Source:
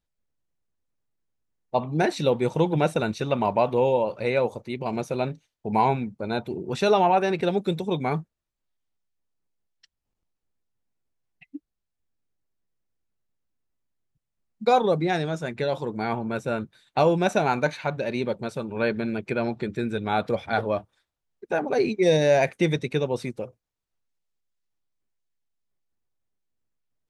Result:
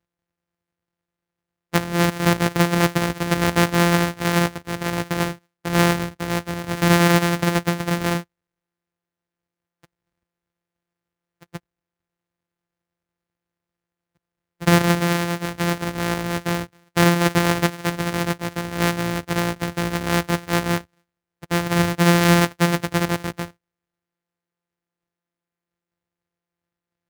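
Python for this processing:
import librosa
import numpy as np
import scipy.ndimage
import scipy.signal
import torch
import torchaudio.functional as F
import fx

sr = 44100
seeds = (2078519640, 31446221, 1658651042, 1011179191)

y = np.r_[np.sort(x[:len(x) // 256 * 256].reshape(-1, 256), axis=1).ravel(), x[len(x) // 256 * 256:]]
y = scipy.signal.sosfilt(scipy.signal.butter(2, 66.0, 'highpass', fs=sr, output='sos'), y)
y = fx.peak_eq(y, sr, hz=1800.0, db=4.0, octaves=0.8)
y = y * 10.0 ** (3.5 / 20.0)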